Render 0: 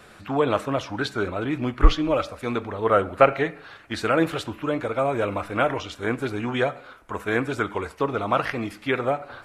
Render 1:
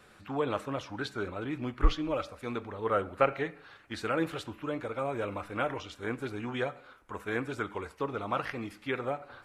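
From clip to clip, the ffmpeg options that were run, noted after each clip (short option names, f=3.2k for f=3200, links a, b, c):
-af "bandreject=f=660:w=12,volume=-9dB"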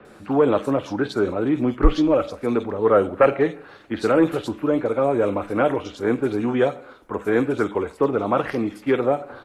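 -filter_complex "[0:a]acrossover=split=190|650|1800[a][b][c][d];[b]aeval=exprs='0.133*sin(PI/2*2*val(0)/0.133)':c=same[e];[a][e][c][d]amix=inputs=4:normalize=0,acrossover=split=2900[f][g];[g]adelay=50[h];[f][h]amix=inputs=2:normalize=0,volume=7dB"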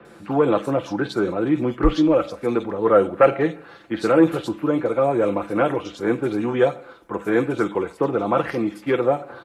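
-af "highpass=46,aecho=1:1:5.9:0.42"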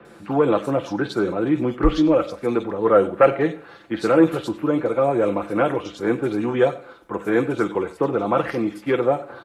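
-af "aecho=1:1:95:0.106"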